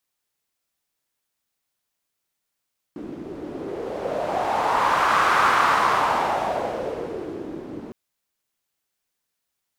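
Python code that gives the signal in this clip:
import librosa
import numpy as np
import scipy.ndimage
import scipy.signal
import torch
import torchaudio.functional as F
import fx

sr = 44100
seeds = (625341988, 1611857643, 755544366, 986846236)

y = fx.wind(sr, seeds[0], length_s=4.96, low_hz=300.0, high_hz=1200.0, q=3.2, gusts=1, swing_db=17.0)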